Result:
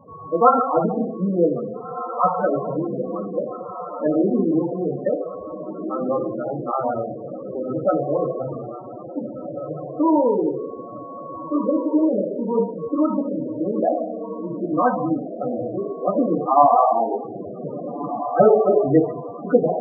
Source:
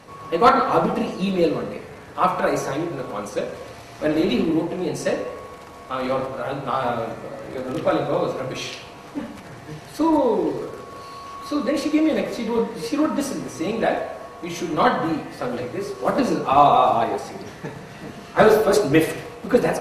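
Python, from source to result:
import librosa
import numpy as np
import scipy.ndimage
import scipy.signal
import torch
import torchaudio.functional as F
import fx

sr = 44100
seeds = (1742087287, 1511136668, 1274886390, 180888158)

y = scipy.signal.sosfilt(scipy.signal.butter(4, 1700.0, 'lowpass', fs=sr, output='sos'), x)
y = fx.echo_diffused(y, sr, ms=1765, feedback_pct=48, wet_db=-9)
y = fx.spec_topn(y, sr, count=16)
y = y * librosa.db_to_amplitude(1.0)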